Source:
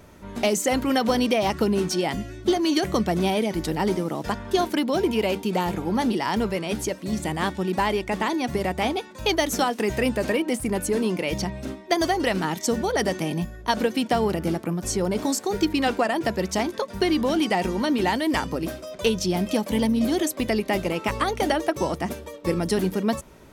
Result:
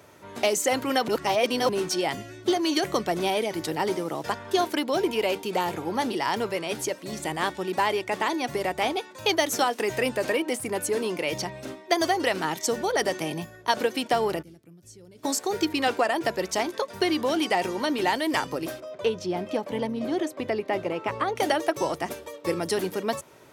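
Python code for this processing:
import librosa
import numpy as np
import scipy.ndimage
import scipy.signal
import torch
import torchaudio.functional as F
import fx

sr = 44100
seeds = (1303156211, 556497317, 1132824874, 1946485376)

y = fx.tone_stack(x, sr, knobs='10-0-1', at=(14.41, 15.23), fade=0.02)
y = fx.lowpass(y, sr, hz=1400.0, slope=6, at=(18.8, 21.36))
y = fx.edit(y, sr, fx.reverse_span(start_s=1.08, length_s=0.61), tone=tone)
y = scipy.signal.sosfilt(scipy.signal.butter(4, 110.0, 'highpass', fs=sr, output='sos'), y)
y = fx.peak_eq(y, sr, hz=200.0, db=-12.0, octaves=0.83)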